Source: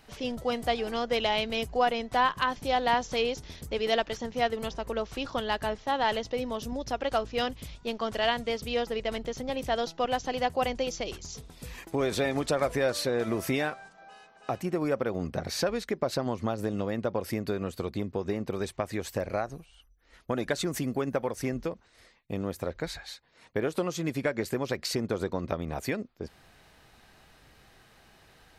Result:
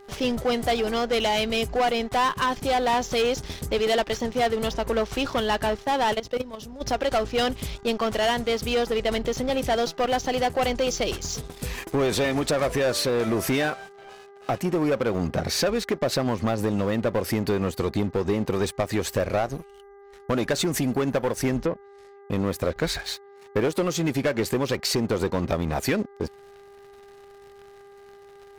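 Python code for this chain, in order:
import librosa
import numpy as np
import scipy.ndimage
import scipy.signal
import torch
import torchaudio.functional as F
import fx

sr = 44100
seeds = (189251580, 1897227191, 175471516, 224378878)

p1 = fx.leveller(x, sr, passes=3)
p2 = fx.rider(p1, sr, range_db=5, speed_s=0.5)
p3 = p1 + F.gain(torch.from_numpy(p2), -2.5).numpy()
p4 = fx.dmg_buzz(p3, sr, base_hz=400.0, harmonics=5, level_db=-41.0, tilt_db=-9, odd_only=False)
p5 = fx.level_steps(p4, sr, step_db=16, at=(6.13, 6.8), fade=0.02)
p6 = fx.env_lowpass_down(p5, sr, base_hz=2500.0, full_db=-16.0, at=(21.61, 22.32))
y = F.gain(torch.from_numpy(p6), -7.5).numpy()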